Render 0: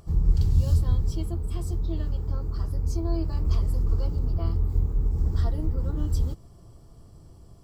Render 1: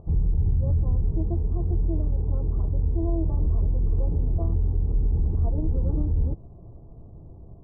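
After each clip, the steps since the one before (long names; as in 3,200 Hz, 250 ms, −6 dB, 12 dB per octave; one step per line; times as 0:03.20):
inverse Chebyshev low-pass filter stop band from 2,200 Hz, stop band 50 dB
brickwall limiter −21 dBFS, peak gain reduction 11.5 dB
level +5 dB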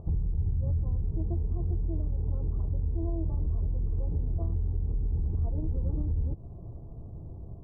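downward compressor 6 to 1, threshold −28 dBFS, peak gain reduction 9.5 dB
parametric band 88 Hz +3.5 dB 2 octaves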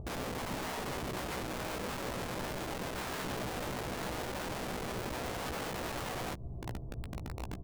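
wrap-around overflow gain 34 dB
double-tracking delay 16 ms −7.5 dB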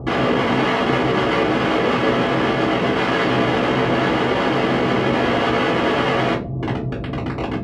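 band-pass filter 220–2,800 Hz
convolution reverb RT60 0.30 s, pre-delay 3 ms, DRR −7.5 dB
level +8.5 dB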